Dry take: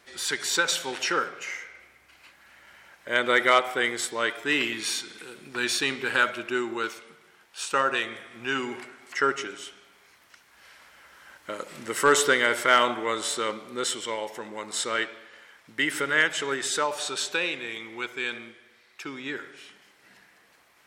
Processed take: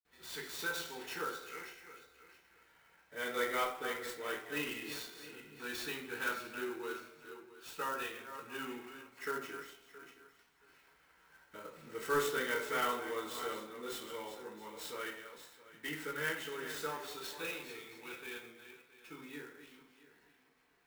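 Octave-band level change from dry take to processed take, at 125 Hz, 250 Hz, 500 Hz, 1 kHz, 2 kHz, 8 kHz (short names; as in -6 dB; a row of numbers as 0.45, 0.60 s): -9.0, -12.0, -11.5, -13.0, -14.5, -17.0 dB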